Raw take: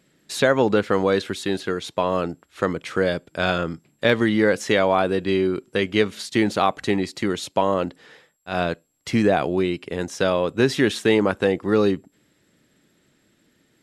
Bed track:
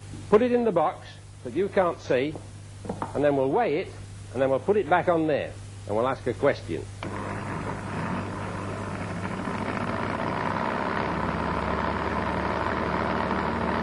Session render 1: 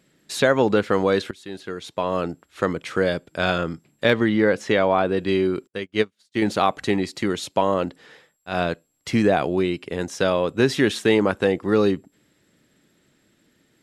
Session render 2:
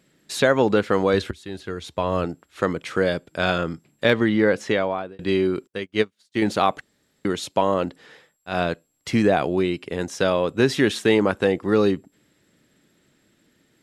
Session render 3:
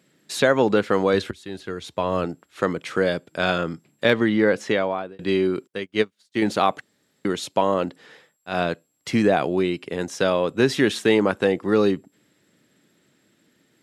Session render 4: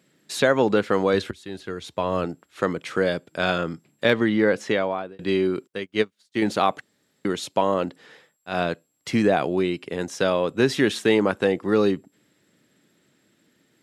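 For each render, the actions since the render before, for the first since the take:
1.31–2.31 fade in, from -18.5 dB; 4.13–5.17 LPF 3100 Hz 6 dB/oct; 5.67–6.42 upward expander 2.5:1, over -39 dBFS
1.13–2.25 bell 73 Hz +13 dB 1.1 oct; 4.63–5.19 fade out; 6.81–7.25 room tone
HPF 110 Hz
gain -1 dB

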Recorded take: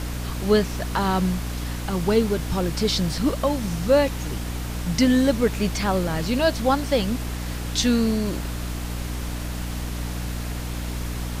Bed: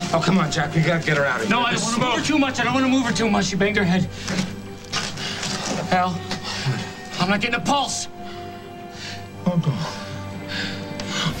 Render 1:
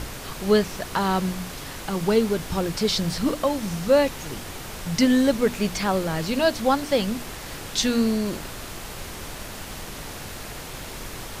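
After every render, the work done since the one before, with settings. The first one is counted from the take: notches 60/120/180/240/300 Hz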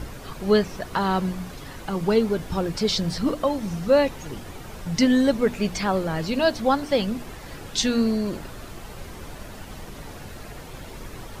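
denoiser 9 dB, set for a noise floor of -37 dBFS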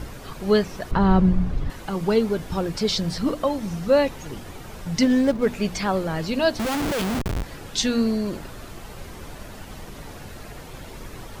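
0.91–1.7 RIAA curve playback; 5.03–5.46 median filter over 15 samples; 6.59–7.43 Schmitt trigger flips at -34 dBFS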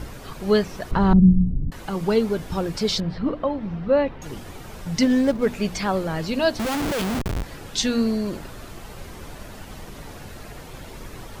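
1.13–1.72 synth low-pass 210 Hz, resonance Q 1.7; 3–4.22 air absorption 380 m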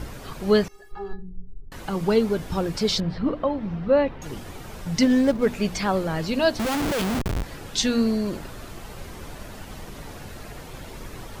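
0.68–1.72 metallic resonator 400 Hz, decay 0.24 s, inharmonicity 0.008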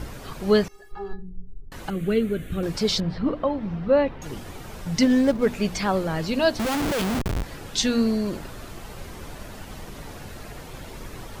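1.9–2.63 fixed phaser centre 2200 Hz, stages 4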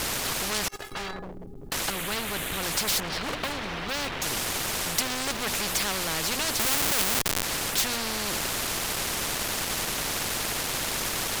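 sample leveller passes 3; spectral compressor 4:1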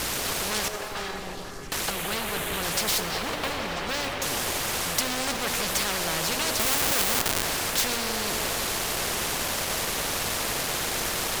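delay with a stepping band-pass 0.165 s, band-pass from 520 Hz, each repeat 0.7 oct, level -1.5 dB; plate-style reverb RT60 2.6 s, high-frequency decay 0.95×, DRR 9 dB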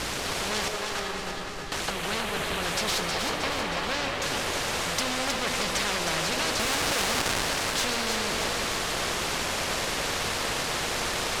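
air absorption 53 m; thinning echo 0.315 s, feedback 58%, level -5 dB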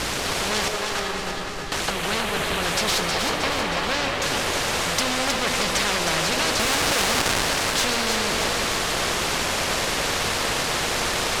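gain +5 dB

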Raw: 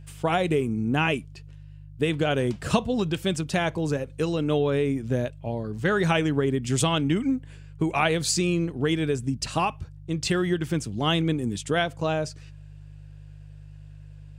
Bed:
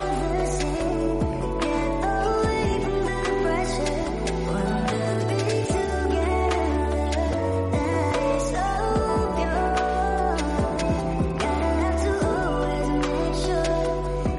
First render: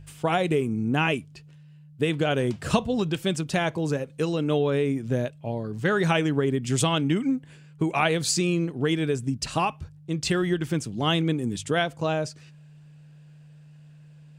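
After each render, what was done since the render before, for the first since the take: de-hum 50 Hz, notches 2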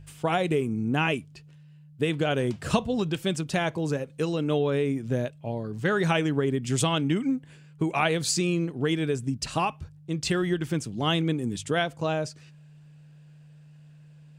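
gain -1.5 dB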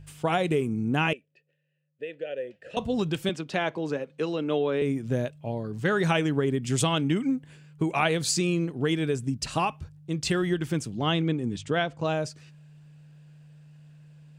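1.13–2.77 vowel filter e; 3.29–4.82 three-band isolator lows -14 dB, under 200 Hz, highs -15 dB, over 5000 Hz; 10.97–12.05 air absorption 87 m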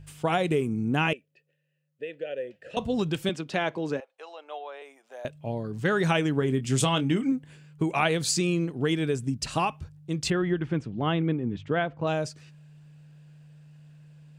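4–5.25 ladder high-pass 660 Hz, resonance 60%; 6.39–7.32 doubler 23 ms -10 dB; 10.3–12.07 LPF 2300 Hz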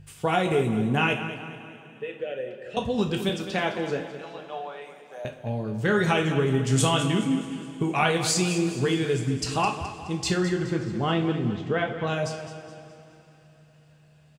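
feedback echo 0.211 s, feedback 43%, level -12 dB; two-slope reverb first 0.37 s, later 3.6 s, from -19 dB, DRR 2 dB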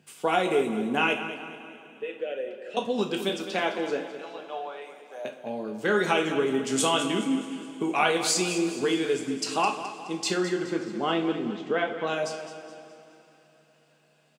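HPF 230 Hz 24 dB/oct; notch 1800 Hz, Q 16

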